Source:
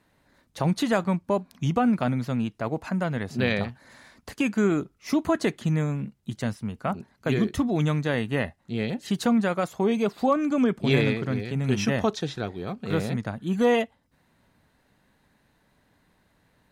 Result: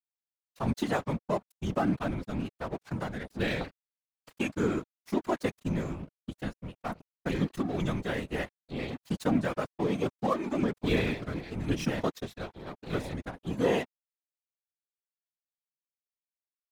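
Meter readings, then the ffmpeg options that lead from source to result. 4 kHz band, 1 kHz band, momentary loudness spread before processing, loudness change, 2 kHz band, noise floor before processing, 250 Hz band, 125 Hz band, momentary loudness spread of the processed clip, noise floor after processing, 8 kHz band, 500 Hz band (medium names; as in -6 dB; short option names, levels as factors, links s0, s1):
-6.0 dB, -5.5 dB, 9 LU, -6.5 dB, -6.0 dB, -67 dBFS, -7.0 dB, -7.5 dB, 11 LU, under -85 dBFS, -7.5 dB, -6.0 dB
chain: -af "aeval=exprs='sgn(val(0))*max(abs(val(0))-0.0178,0)':c=same,afftfilt=real='hypot(re,im)*cos(2*PI*random(0))':imag='hypot(re,im)*sin(2*PI*random(1))':win_size=512:overlap=0.75,volume=1.19"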